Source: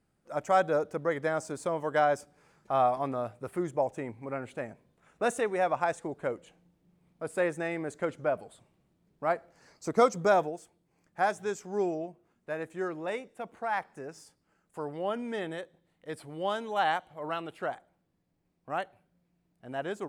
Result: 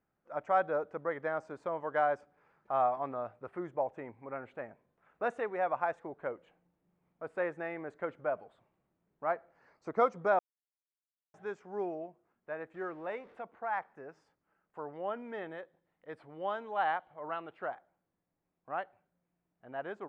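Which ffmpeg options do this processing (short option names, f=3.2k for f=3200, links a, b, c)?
-filter_complex "[0:a]asettb=1/sr,asplit=3[a][b][c];[a]atrim=end=12.744[d];[b]atrim=start=12.74:end=13.41,asetpts=PTS-STARTPTS,afade=t=in:d=0.004:c=qsin,afade=t=out:st=0.666:d=0.004:c=qsin,aeval=exprs='val(0)+0.5*0.00355*sgn(val(0))':c=same[e];[c]atrim=start=13.406[f];[d][e]acrossfade=d=0.004:c1=hsin:c2=qsin[g];[g][f]acrossfade=d=0.004:c1=qsin:c2=hsin,asplit=3[h][i][j];[h]atrim=end=10.39,asetpts=PTS-STARTPTS,afade=t=out:st=10.386:d=0.004:c=hsin[k];[i]atrim=start=10.39:end=11.34,asetpts=PTS-STARTPTS,volume=0[l];[j]atrim=start=11.34,asetpts=PTS-STARTPTS,afade=t=in:d=0.004:c=hsin[m];[k][l][m]concat=n=3:v=0:a=1,lowpass=1.6k,lowshelf=f=460:g=-12"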